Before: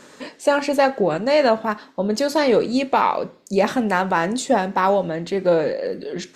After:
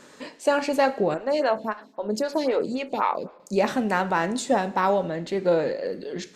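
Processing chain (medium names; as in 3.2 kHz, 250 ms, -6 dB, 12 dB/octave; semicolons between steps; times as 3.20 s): Schroeder reverb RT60 0.73 s, combs from 33 ms, DRR 17 dB; 1.14–3.40 s: lamp-driven phase shifter 3.8 Hz; trim -4 dB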